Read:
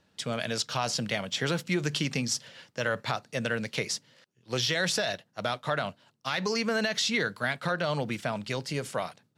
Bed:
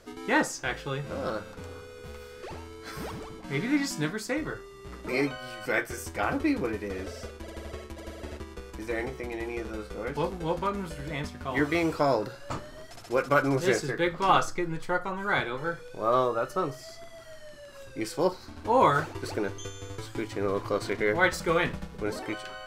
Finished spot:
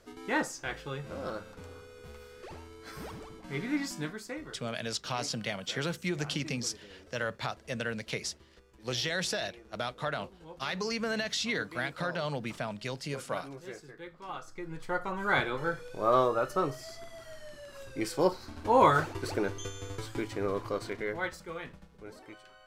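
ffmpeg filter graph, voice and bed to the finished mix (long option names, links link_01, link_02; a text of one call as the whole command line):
ffmpeg -i stem1.wav -i stem2.wav -filter_complex "[0:a]adelay=4350,volume=-4.5dB[link_01];[1:a]volume=13dB,afade=type=out:start_time=3.88:duration=0.95:silence=0.211349,afade=type=in:start_time=14.43:duration=0.85:silence=0.11885,afade=type=out:start_time=20.02:duration=1.43:silence=0.177828[link_02];[link_01][link_02]amix=inputs=2:normalize=0" out.wav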